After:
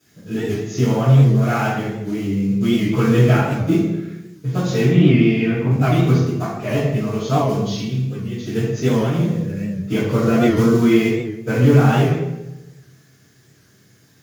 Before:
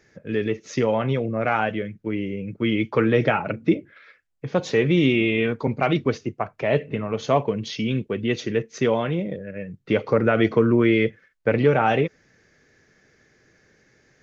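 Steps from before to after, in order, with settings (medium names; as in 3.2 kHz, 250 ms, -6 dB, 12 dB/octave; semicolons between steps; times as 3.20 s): block-companded coder 5-bit; 4.84–5.71 s: low-pass 2.9 kHz 24 dB/octave; 7.74–8.44 s: compression 6:1, threshold -30 dBFS, peak gain reduction 12 dB; word length cut 10-bit, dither triangular; Chebyshev shaper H 6 -28 dB, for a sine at -4.5 dBFS; reverberation RT60 1.0 s, pre-delay 3 ms, DRR -15.5 dB; warped record 78 rpm, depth 100 cents; trim -15 dB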